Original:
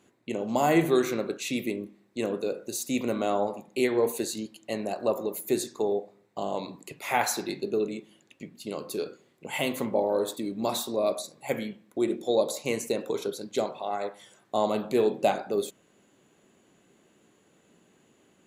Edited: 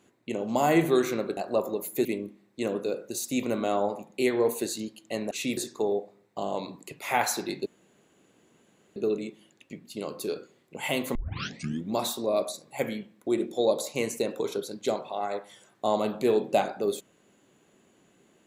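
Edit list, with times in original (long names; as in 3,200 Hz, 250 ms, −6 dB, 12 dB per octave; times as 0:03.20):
0:01.37–0:01.63: swap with 0:04.89–0:05.57
0:07.66: splice in room tone 1.30 s
0:09.85: tape start 0.78 s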